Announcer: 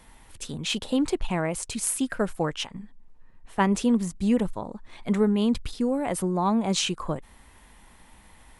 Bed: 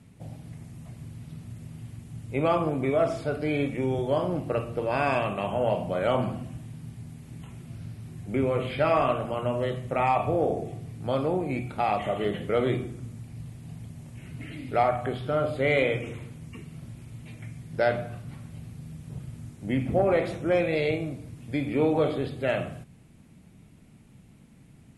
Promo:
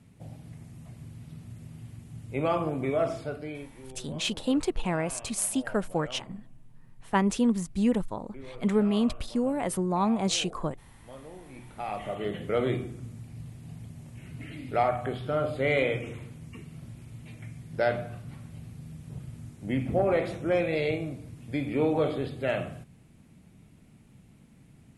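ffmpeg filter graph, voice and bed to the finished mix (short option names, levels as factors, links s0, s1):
-filter_complex "[0:a]adelay=3550,volume=0.794[s0];[1:a]volume=5.31,afade=t=out:st=3.11:d=0.57:silence=0.149624,afade=t=in:st=11.49:d=1.06:silence=0.133352[s1];[s0][s1]amix=inputs=2:normalize=0"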